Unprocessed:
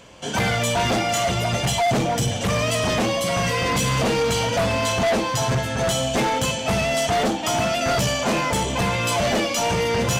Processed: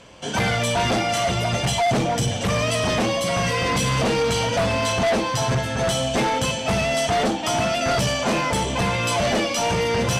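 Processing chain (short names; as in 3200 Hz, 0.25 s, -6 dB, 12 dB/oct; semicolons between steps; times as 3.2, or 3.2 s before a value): LPF 11000 Hz 12 dB/oct; notch 6900 Hz, Q 18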